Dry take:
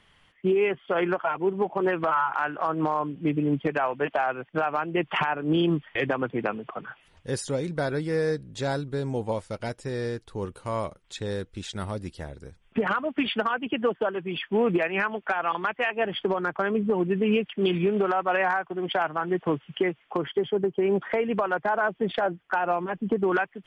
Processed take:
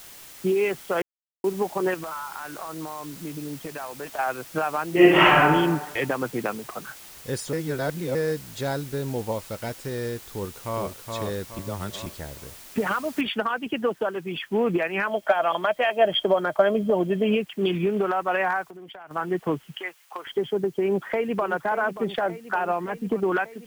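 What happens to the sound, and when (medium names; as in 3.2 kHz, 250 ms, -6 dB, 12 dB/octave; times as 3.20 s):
1.02–1.44 s: mute
1.94–4.19 s: compression 3:1, threshold -34 dBFS
4.89–5.40 s: reverb throw, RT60 1.2 s, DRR -11.5 dB
7.53–8.15 s: reverse
10.31–11.01 s: echo throw 420 ms, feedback 40%, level -3.5 dB
11.59–12.06 s: reverse
13.21 s: noise floor step -45 dB -59 dB
15.07–17.35 s: small resonant body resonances 620/3200 Hz, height 17 dB
18.67–19.11 s: compression 10:1, threshold -39 dBFS
19.76–20.27 s: high-pass 950 Hz
20.83–21.46 s: echo throw 580 ms, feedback 75%, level -13 dB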